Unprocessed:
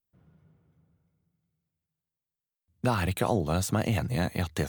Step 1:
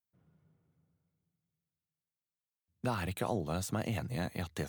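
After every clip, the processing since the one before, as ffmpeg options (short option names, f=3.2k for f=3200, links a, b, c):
-af "highpass=82,volume=-7.5dB"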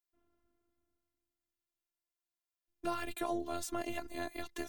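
-af "afftfilt=real='hypot(re,im)*cos(PI*b)':imag='0':win_size=512:overlap=0.75,volume=2dB"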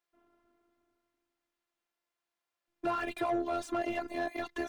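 -filter_complex "[0:a]asplit=2[a][b];[b]highpass=f=720:p=1,volume=21dB,asoftclip=type=tanh:threshold=-21dB[c];[a][c]amix=inputs=2:normalize=0,lowpass=f=1.2k:p=1,volume=-6dB"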